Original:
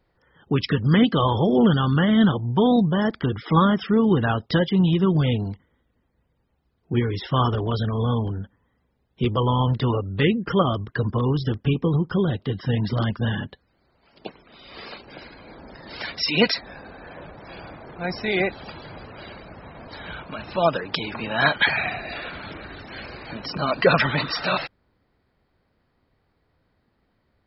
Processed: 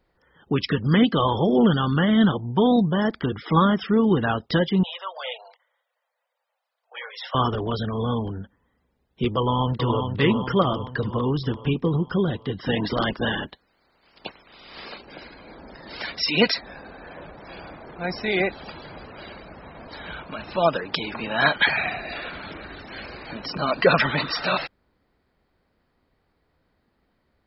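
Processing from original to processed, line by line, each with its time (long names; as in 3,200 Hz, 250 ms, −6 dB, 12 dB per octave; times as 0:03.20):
0:04.83–0:07.35: Butterworth high-pass 530 Hz 72 dB per octave
0:09.38–0:10.04: delay throw 410 ms, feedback 60%, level −5.5 dB
0:12.60–0:14.83: ceiling on every frequency bin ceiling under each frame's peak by 13 dB
whole clip: parametric band 110 Hz −5.5 dB 0.77 octaves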